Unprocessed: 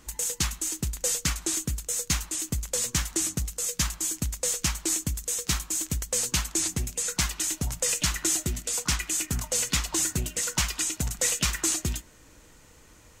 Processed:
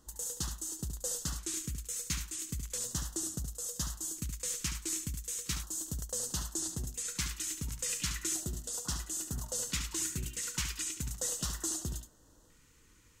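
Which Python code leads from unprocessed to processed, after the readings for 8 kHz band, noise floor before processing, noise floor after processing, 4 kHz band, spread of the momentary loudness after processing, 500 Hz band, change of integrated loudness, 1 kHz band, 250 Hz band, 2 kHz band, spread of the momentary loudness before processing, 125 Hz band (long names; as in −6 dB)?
−8.5 dB, −54 dBFS, −63 dBFS, −9.5 dB, 4 LU, −10.0 dB, −9.0 dB, −11.0 dB, −9.0 dB, −11.5 dB, 4 LU, −8.0 dB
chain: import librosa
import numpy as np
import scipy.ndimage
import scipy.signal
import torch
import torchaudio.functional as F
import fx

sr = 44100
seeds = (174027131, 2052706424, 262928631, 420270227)

y = fx.filter_lfo_notch(x, sr, shape='square', hz=0.36, low_hz=680.0, high_hz=2300.0, q=0.91)
y = y + 10.0 ** (-8.0 / 20.0) * np.pad(y, (int(72 * sr / 1000.0), 0))[:len(y)]
y = y * 10.0 ** (-9.0 / 20.0)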